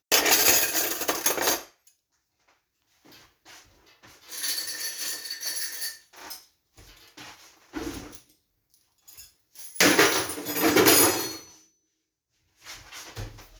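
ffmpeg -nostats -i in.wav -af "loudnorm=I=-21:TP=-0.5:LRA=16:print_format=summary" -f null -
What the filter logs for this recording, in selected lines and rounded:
Input Integrated:    -21.7 LUFS
Input True Peak:      -4.7 dBTP
Input LRA:            12.2 LU
Input Threshold:     -35.6 LUFS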